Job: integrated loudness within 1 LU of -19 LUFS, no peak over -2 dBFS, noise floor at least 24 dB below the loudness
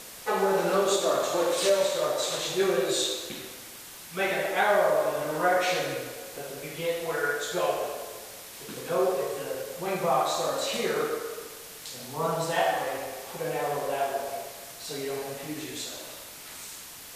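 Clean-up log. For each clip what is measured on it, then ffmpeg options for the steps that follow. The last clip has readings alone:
noise floor -44 dBFS; noise floor target -52 dBFS; loudness -28.0 LUFS; peak -11.5 dBFS; loudness target -19.0 LUFS
-> -af "afftdn=nr=8:nf=-44"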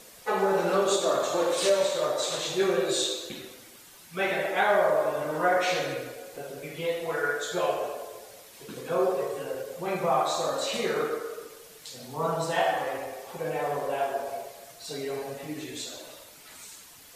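noise floor -51 dBFS; noise floor target -52 dBFS
-> -af "afftdn=nr=6:nf=-51"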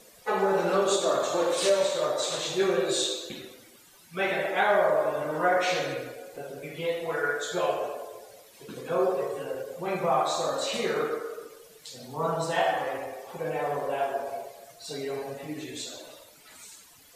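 noise floor -55 dBFS; loudness -28.0 LUFS; peak -11.5 dBFS; loudness target -19.0 LUFS
-> -af "volume=9dB"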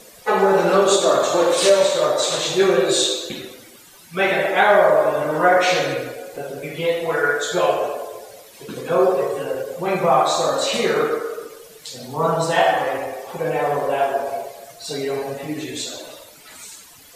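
loudness -19.0 LUFS; peak -2.5 dBFS; noise floor -46 dBFS

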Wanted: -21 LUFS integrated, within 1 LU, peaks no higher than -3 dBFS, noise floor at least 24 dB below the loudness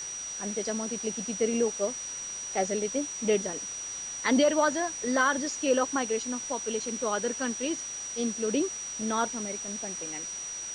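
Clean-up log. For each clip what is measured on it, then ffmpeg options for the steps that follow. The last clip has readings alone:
steady tone 5800 Hz; tone level -35 dBFS; noise floor -38 dBFS; noise floor target -54 dBFS; loudness -29.5 LUFS; peak -13.0 dBFS; loudness target -21.0 LUFS
-> -af "bandreject=f=5.8k:w=30"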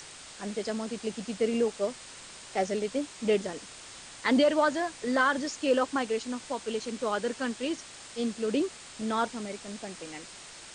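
steady tone none; noise floor -47 dBFS; noise floor target -55 dBFS
-> -af "afftdn=nr=8:nf=-47"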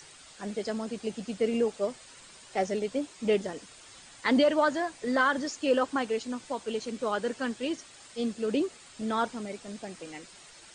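noise floor -52 dBFS; noise floor target -54 dBFS
-> -af "afftdn=nr=6:nf=-52"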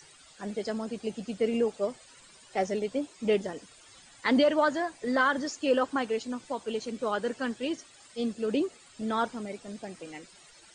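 noise floor -55 dBFS; loudness -30.5 LUFS; peak -13.5 dBFS; loudness target -21.0 LUFS
-> -af "volume=9.5dB"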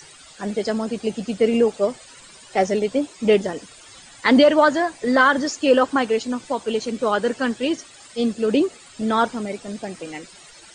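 loudness -21.0 LUFS; peak -4.0 dBFS; noise floor -46 dBFS

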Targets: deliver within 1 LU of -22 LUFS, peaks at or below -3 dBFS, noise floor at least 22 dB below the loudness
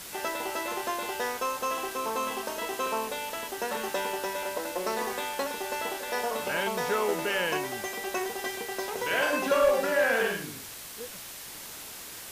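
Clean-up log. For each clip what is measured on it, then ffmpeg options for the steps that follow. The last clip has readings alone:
noise floor -43 dBFS; noise floor target -52 dBFS; loudness -30.0 LUFS; peak -14.5 dBFS; loudness target -22.0 LUFS
-> -af "afftdn=nr=9:nf=-43"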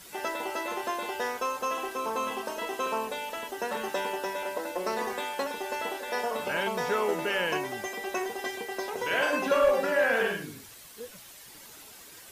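noise floor -49 dBFS; noise floor target -52 dBFS
-> -af "afftdn=nr=6:nf=-49"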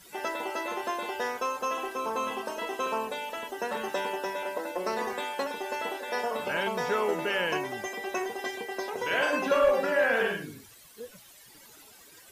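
noise floor -53 dBFS; loudness -30.0 LUFS; peak -15.0 dBFS; loudness target -22.0 LUFS
-> -af "volume=8dB"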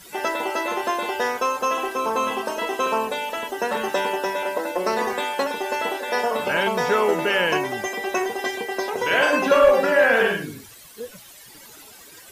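loudness -22.0 LUFS; peak -7.0 dBFS; noise floor -45 dBFS

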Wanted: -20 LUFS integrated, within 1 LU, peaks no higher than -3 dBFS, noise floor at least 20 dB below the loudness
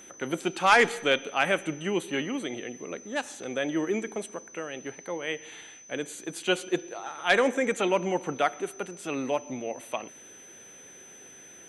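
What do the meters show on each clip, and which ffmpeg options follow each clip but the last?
steady tone 6100 Hz; tone level -48 dBFS; loudness -28.5 LUFS; peak -10.0 dBFS; loudness target -20.0 LUFS
-> -af "bandreject=f=6.1k:w=30"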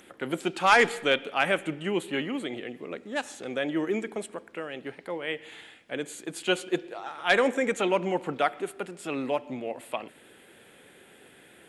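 steady tone none; loudness -28.5 LUFS; peak -10.0 dBFS; loudness target -20.0 LUFS
-> -af "volume=8.5dB,alimiter=limit=-3dB:level=0:latency=1"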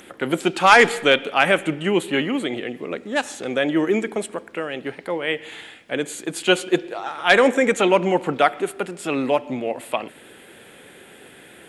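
loudness -20.5 LUFS; peak -3.0 dBFS; noise floor -46 dBFS

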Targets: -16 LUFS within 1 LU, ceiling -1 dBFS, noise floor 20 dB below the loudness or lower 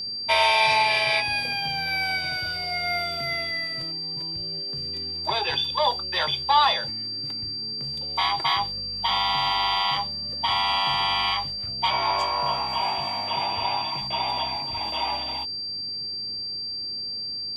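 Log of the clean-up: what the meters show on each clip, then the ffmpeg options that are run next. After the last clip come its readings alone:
steady tone 4700 Hz; tone level -29 dBFS; loudness -24.0 LUFS; peak -8.5 dBFS; loudness target -16.0 LUFS
-> -af "bandreject=f=4.7k:w=30"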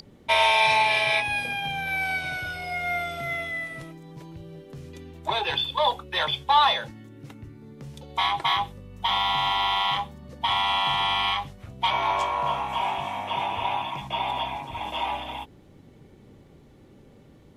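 steady tone none; loudness -25.0 LUFS; peak -8.5 dBFS; loudness target -16.0 LUFS
-> -af "volume=9dB,alimiter=limit=-1dB:level=0:latency=1"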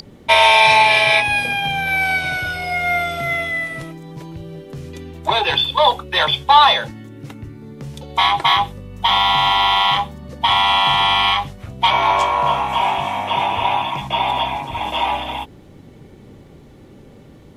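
loudness -16.0 LUFS; peak -1.0 dBFS; noise floor -44 dBFS

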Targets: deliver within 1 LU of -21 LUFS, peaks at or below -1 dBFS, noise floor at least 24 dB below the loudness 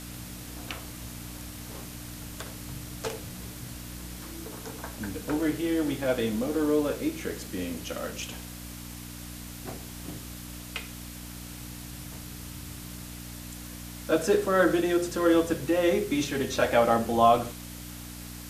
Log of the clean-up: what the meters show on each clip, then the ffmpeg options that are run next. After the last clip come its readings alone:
hum 60 Hz; harmonics up to 300 Hz; hum level -41 dBFS; noise floor -42 dBFS; noise floor target -53 dBFS; loudness -28.5 LUFS; peak -9.0 dBFS; loudness target -21.0 LUFS
-> -af "bandreject=f=60:t=h:w=4,bandreject=f=120:t=h:w=4,bandreject=f=180:t=h:w=4,bandreject=f=240:t=h:w=4,bandreject=f=300:t=h:w=4"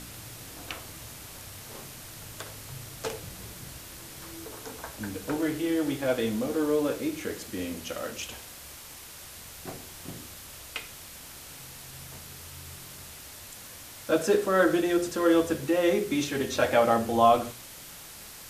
hum none; noise floor -45 dBFS; noise floor target -52 dBFS
-> -af "afftdn=nr=7:nf=-45"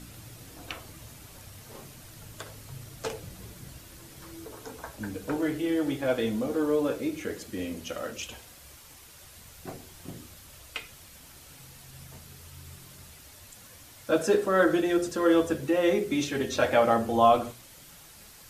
noise floor -51 dBFS; loudness -27.0 LUFS; peak -9.5 dBFS; loudness target -21.0 LUFS
-> -af "volume=6dB"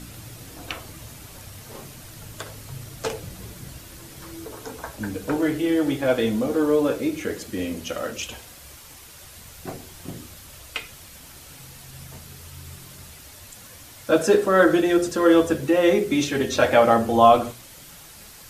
loudness -21.0 LUFS; peak -3.5 dBFS; noise floor -45 dBFS

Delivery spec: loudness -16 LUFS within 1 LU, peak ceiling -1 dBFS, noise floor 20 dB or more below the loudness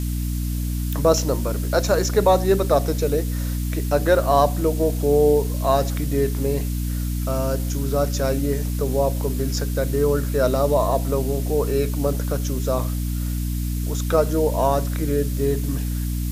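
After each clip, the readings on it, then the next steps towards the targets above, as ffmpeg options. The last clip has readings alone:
hum 60 Hz; harmonics up to 300 Hz; hum level -22 dBFS; noise floor -25 dBFS; noise floor target -42 dBFS; loudness -22.0 LUFS; peak -4.5 dBFS; loudness target -16.0 LUFS
-> -af "bandreject=f=60:t=h:w=6,bandreject=f=120:t=h:w=6,bandreject=f=180:t=h:w=6,bandreject=f=240:t=h:w=6,bandreject=f=300:t=h:w=6"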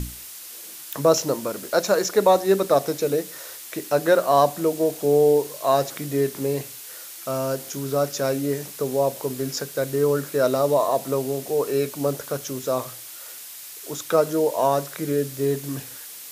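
hum none; noise floor -39 dBFS; noise floor target -43 dBFS
-> -af "afftdn=nr=6:nf=-39"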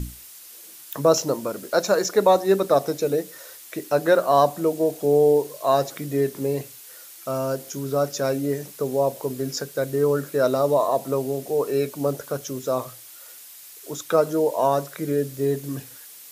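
noise floor -44 dBFS; loudness -23.0 LUFS; peak -5.5 dBFS; loudness target -16.0 LUFS
-> -af "volume=7dB,alimiter=limit=-1dB:level=0:latency=1"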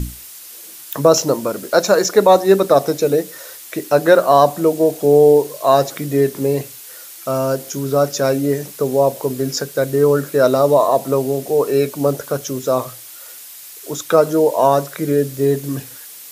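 loudness -16.0 LUFS; peak -1.0 dBFS; noise floor -37 dBFS

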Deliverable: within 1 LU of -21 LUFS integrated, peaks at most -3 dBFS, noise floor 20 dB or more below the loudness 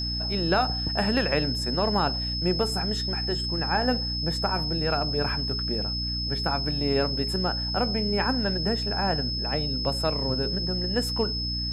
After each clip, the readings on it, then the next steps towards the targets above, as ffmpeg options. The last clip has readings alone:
hum 60 Hz; harmonics up to 300 Hz; hum level -30 dBFS; steady tone 5200 Hz; tone level -29 dBFS; loudness -25.5 LUFS; peak -10.0 dBFS; loudness target -21.0 LUFS
-> -af "bandreject=f=60:t=h:w=6,bandreject=f=120:t=h:w=6,bandreject=f=180:t=h:w=6,bandreject=f=240:t=h:w=6,bandreject=f=300:t=h:w=6"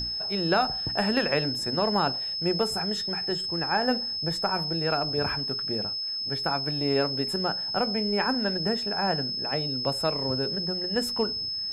hum none; steady tone 5200 Hz; tone level -29 dBFS
-> -af "bandreject=f=5.2k:w=30"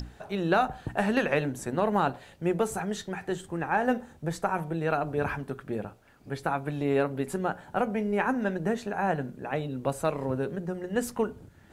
steady tone none; loudness -30.0 LUFS; peak -10.5 dBFS; loudness target -21.0 LUFS
-> -af "volume=9dB,alimiter=limit=-3dB:level=0:latency=1"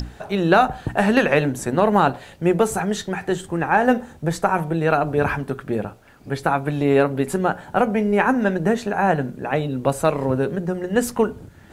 loudness -21.0 LUFS; peak -3.0 dBFS; noise floor -46 dBFS

